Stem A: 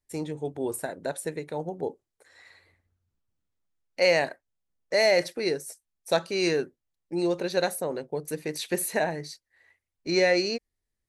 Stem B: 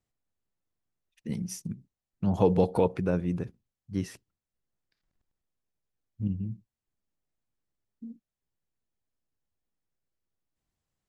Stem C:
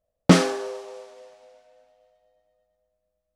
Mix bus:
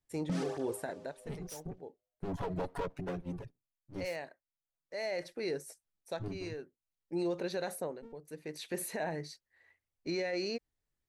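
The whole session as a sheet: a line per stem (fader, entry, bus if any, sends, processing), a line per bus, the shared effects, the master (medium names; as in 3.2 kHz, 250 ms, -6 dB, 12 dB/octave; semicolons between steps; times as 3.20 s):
-4.0 dB, 0.00 s, no send, treble shelf 4.7 kHz -7 dB; auto duck -13 dB, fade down 0.20 s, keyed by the second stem
-5.5 dB, 0.00 s, no send, comb filter that takes the minimum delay 7.1 ms; reverb removal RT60 0.66 s
-11.5 dB, 0.00 s, no send, bass shelf 340 Hz +11 dB; gate with hold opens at -47 dBFS; cancelling through-zero flanger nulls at 0.85 Hz, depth 5.9 ms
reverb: none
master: peak limiter -26.5 dBFS, peak gain reduction 19 dB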